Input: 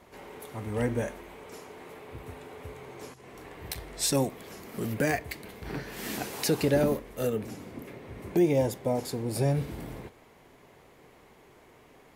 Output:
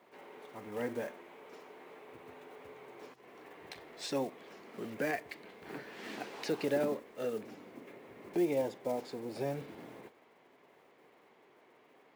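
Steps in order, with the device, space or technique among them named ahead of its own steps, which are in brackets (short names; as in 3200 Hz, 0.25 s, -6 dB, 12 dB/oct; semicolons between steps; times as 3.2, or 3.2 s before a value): early digital voice recorder (BPF 260–3800 Hz; block floating point 5-bit); gain -6 dB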